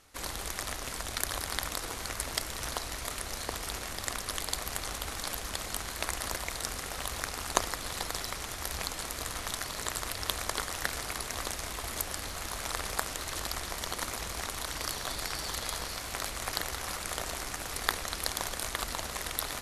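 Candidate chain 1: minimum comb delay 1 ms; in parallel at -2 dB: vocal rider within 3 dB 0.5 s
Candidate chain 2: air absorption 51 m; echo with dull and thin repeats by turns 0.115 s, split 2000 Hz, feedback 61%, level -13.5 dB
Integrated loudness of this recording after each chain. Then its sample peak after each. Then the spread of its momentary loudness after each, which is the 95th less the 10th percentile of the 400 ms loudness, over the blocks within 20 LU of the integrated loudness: -31.0, -36.5 LUFS; -1.0, -3.5 dBFS; 2, 3 LU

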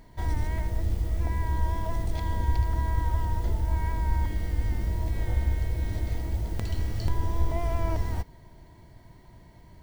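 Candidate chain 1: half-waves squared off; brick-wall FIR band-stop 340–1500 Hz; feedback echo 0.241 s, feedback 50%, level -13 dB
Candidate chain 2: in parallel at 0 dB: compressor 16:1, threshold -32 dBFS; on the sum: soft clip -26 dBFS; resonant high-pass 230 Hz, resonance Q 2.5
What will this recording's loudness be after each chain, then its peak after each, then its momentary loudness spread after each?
-26.0, -37.5 LUFS; -10.0, -20.0 dBFS; 4, 12 LU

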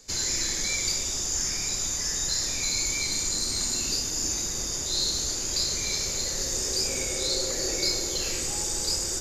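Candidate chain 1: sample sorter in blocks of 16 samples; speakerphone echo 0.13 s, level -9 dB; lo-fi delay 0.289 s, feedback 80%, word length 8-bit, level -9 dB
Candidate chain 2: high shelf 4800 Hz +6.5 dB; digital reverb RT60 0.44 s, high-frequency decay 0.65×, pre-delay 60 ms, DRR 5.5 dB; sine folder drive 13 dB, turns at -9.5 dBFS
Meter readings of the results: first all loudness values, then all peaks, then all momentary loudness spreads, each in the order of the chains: -26.5, -10.0 LUFS; -13.5, -6.0 dBFS; 2, 0 LU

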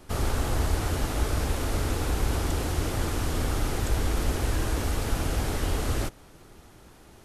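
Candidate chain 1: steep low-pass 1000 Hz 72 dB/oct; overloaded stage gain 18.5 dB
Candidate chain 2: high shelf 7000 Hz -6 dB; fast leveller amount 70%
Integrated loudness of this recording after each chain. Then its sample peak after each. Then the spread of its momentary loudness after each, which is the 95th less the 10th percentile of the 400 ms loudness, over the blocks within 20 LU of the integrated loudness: -30.0, -25.5 LUFS; -18.5, -11.0 dBFS; 2, 7 LU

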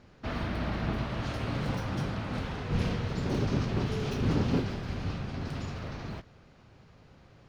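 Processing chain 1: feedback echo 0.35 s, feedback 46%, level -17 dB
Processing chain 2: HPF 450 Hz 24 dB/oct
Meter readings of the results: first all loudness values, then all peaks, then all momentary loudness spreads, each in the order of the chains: -32.5, -40.0 LUFS; -15.5, -24.0 dBFS; 9, 7 LU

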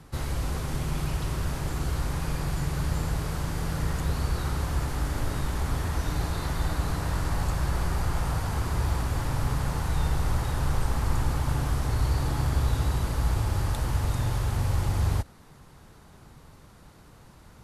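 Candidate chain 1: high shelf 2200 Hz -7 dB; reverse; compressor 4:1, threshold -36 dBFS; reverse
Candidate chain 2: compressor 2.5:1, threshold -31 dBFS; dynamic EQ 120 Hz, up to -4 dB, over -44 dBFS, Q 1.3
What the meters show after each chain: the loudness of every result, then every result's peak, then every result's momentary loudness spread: -40.0, -36.0 LUFS; -26.0, -22.0 dBFS; 14, 17 LU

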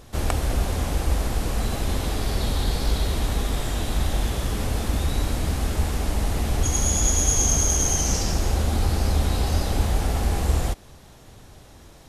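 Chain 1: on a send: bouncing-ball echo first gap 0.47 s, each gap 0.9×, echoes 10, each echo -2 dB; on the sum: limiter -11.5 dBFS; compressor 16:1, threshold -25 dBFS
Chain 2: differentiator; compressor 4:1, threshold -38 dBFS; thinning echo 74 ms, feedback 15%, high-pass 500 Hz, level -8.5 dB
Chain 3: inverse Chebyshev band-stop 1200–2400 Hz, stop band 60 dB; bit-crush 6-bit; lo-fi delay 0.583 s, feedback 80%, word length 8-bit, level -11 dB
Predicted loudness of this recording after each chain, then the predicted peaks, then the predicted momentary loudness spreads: -31.0, -37.0, -24.0 LUFS; -18.0, -18.0, -7.0 dBFS; 4, 6, 8 LU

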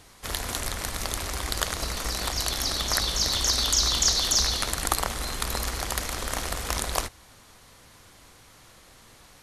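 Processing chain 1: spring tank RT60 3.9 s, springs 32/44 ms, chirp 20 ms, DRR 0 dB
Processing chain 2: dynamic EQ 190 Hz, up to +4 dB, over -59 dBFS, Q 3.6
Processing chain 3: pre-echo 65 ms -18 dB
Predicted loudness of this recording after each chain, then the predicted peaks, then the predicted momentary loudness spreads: -25.0, -25.5, -25.5 LUFS; -3.5, -4.0, -4.0 dBFS; 14, 9, 9 LU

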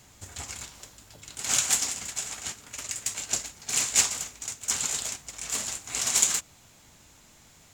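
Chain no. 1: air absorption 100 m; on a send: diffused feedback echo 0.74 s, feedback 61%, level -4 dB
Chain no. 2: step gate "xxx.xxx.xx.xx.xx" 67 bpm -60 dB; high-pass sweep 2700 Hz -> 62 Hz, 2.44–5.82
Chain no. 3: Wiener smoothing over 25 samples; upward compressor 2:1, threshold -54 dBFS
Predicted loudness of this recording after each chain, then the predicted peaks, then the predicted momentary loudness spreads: -32.5, -27.5, -28.5 LUFS; -13.0, -4.5, -4.5 dBFS; 15, 14, 21 LU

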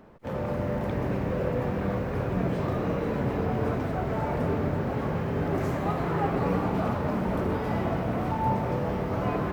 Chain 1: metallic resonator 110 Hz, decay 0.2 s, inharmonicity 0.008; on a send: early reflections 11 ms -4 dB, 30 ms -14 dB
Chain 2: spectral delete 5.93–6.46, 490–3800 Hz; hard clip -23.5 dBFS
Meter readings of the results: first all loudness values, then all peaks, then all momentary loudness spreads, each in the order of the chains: -36.0, -29.5 LUFS; -21.5, -23.5 dBFS; 3, 1 LU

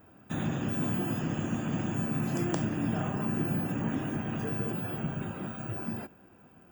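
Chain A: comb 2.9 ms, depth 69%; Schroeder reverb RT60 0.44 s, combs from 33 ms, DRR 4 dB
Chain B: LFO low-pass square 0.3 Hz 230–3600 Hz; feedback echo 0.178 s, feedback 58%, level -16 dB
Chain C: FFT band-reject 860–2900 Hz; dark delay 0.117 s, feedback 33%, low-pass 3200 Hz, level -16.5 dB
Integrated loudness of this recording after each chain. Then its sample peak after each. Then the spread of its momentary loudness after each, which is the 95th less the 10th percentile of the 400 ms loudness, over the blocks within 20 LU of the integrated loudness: -31.0, -30.5, -32.0 LUFS; -12.0, -15.5, -16.0 dBFS; 8, 8, 7 LU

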